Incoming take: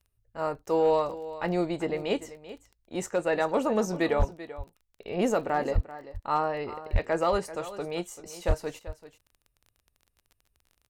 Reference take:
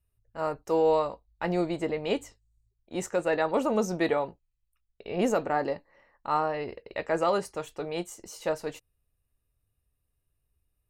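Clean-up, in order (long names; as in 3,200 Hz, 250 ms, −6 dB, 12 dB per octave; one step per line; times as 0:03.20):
clipped peaks rebuilt −16 dBFS
click removal
high-pass at the plosives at 0:04.18/0:05.74/0:06.92/0:08.47
echo removal 388 ms −15 dB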